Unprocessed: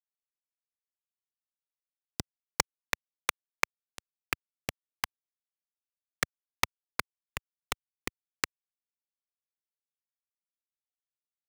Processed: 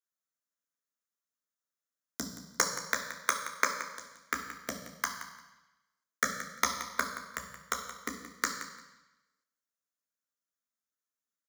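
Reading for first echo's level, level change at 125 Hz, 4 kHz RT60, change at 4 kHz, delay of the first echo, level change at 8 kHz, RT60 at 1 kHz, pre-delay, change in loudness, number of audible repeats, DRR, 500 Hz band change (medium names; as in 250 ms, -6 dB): -12.5 dB, -4.0 dB, 1.1 s, -1.0 dB, 174 ms, +4.0 dB, 1.1 s, 3 ms, +1.5 dB, 2, 2.5 dB, +2.0 dB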